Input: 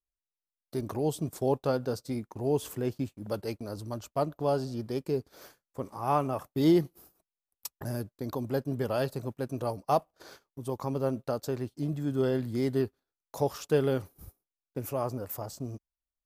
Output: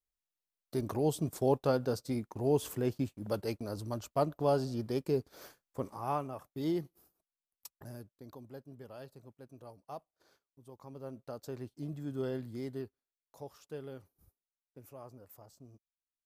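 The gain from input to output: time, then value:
5.85 s -1 dB
6.29 s -10.5 dB
7.68 s -10.5 dB
8.67 s -19 dB
10.72 s -19 dB
11.61 s -8.5 dB
12.34 s -8.5 dB
13.41 s -18 dB

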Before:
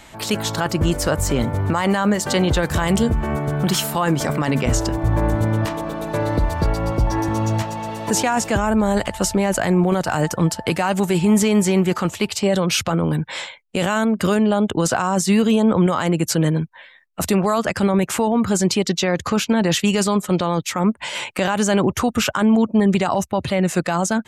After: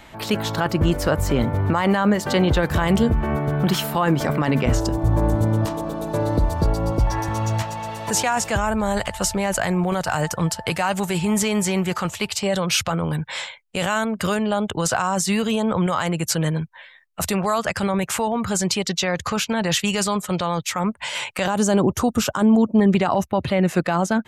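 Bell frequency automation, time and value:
bell -9 dB 1.3 oct
7900 Hz
from 4.8 s 2100 Hz
from 6.99 s 290 Hz
from 21.46 s 2200 Hz
from 22.79 s 7800 Hz

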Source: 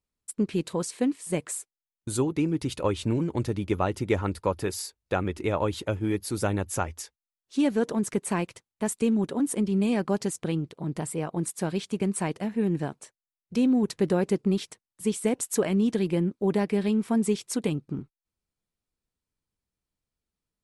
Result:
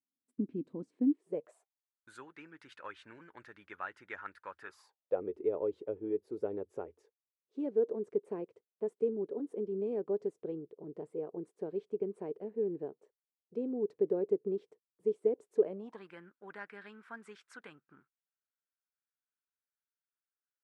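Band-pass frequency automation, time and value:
band-pass, Q 5.5
1.03 s 270 Hz
2.09 s 1600 Hz
4.61 s 1600 Hz
5.22 s 430 Hz
15.65 s 430 Hz
16.09 s 1500 Hz

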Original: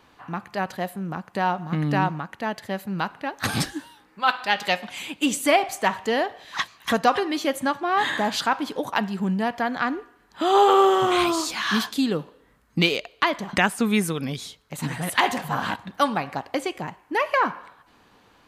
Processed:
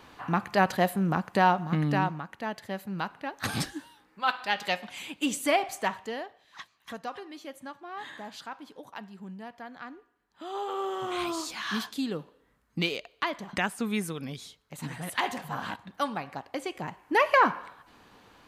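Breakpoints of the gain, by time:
1.23 s +4 dB
2.15 s -6 dB
5.82 s -6 dB
6.41 s -18 dB
10.66 s -18 dB
11.37 s -8.5 dB
16.55 s -8.5 dB
17.13 s +0.5 dB

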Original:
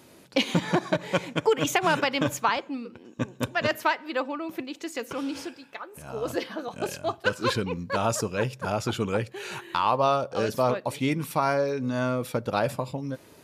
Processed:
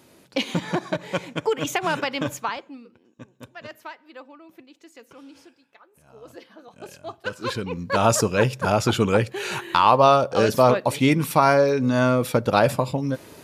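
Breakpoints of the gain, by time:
2.29 s -1 dB
3.21 s -14 dB
6.46 s -14 dB
7.61 s -1 dB
8.07 s +7.5 dB

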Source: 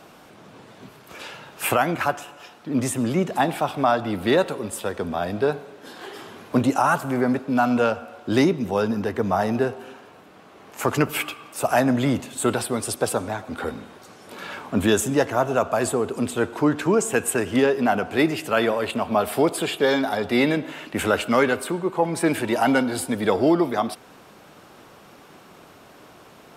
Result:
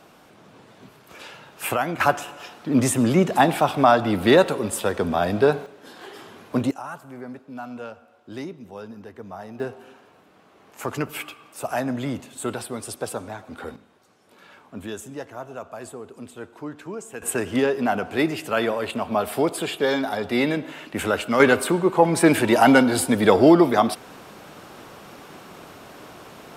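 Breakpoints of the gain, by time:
-3.5 dB
from 2 s +4 dB
from 5.66 s -3 dB
from 6.71 s -15.5 dB
from 9.6 s -6.5 dB
from 13.76 s -14.5 dB
from 17.22 s -2 dB
from 21.4 s +5 dB

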